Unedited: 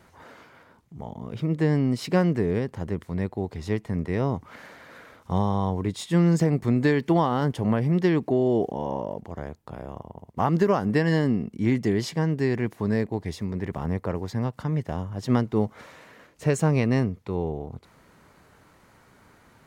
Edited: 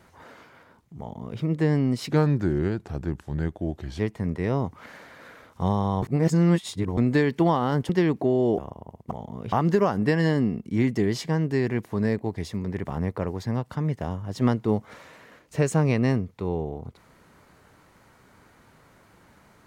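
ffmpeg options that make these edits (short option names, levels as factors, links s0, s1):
-filter_complex "[0:a]asplit=9[s0][s1][s2][s3][s4][s5][s6][s7][s8];[s0]atrim=end=2.104[s9];[s1]atrim=start=2.1:end=3.69,asetpts=PTS-STARTPTS,asetrate=37044,aresample=44100[s10];[s2]atrim=start=3.686:end=5.722[s11];[s3]atrim=start=5.718:end=6.672,asetpts=PTS-STARTPTS,areverse[s12];[s4]atrim=start=6.668:end=7.592[s13];[s5]atrim=start=7.958:end=8.652[s14];[s6]atrim=start=9.868:end=10.402[s15];[s7]atrim=start=0.988:end=1.402[s16];[s8]atrim=start=10.398[s17];[s9][s10]acrossfade=d=0.004:c1=hsin:c2=hsin[s18];[s18][s11]acrossfade=d=0.004:c1=hsin:c2=hsin[s19];[s19][s12]acrossfade=d=0.004:c1=hsin:c2=hsin[s20];[s20][s13]acrossfade=d=0.004:c1=hsin:c2=hsin[s21];[s21][s14]acrossfade=d=0.004:c1=hsin:c2=hsin[s22];[s22][s15]acrossfade=d=0.004:c1=hsin:c2=hsin[s23];[s23][s16]acrossfade=d=0.004:c1=hsin:c2=hsin[s24];[s24][s17]acrossfade=d=0.004:c1=hsin:c2=hsin"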